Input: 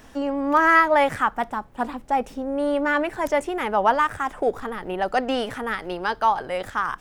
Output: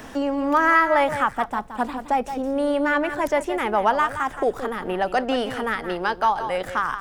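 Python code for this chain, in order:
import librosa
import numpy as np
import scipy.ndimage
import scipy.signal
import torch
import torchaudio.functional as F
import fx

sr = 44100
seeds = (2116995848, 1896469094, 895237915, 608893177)

y = x + 10.0 ** (-11.5 / 20.0) * np.pad(x, (int(171 * sr / 1000.0), 0))[:len(x)]
y = fx.band_squash(y, sr, depth_pct=40)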